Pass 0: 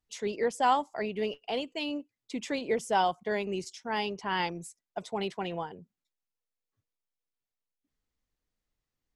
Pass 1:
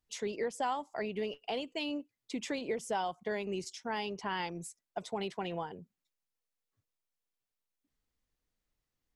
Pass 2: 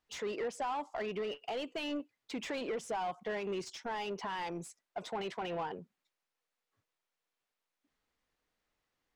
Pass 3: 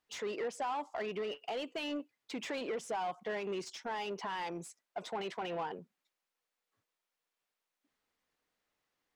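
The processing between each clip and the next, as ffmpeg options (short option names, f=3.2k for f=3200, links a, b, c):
-af "acompressor=threshold=-33dB:ratio=3"
-filter_complex "[0:a]alimiter=level_in=5dB:limit=-24dB:level=0:latency=1:release=49,volume=-5dB,asplit=2[a][b];[b]highpass=f=720:p=1,volume=16dB,asoftclip=type=tanh:threshold=-29dB[c];[a][c]amix=inputs=2:normalize=0,lowpass=f=1.9k:p=1,volume=-6dB"
-af "lowshelf=f=92:g=-11.5"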